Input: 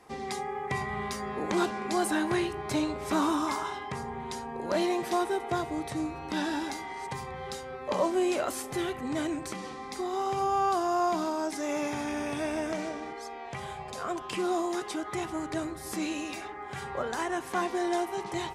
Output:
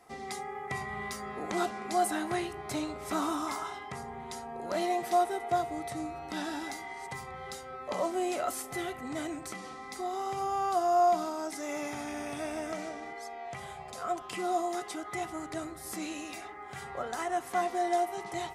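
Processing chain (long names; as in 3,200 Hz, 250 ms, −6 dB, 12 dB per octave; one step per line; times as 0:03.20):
high-shelf EQ 7,000 Hz +8.5 dB
hollow resonant body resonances 710/1,300/2,000 Hz, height 12 dB, ringing for 70 ms
level −6 dB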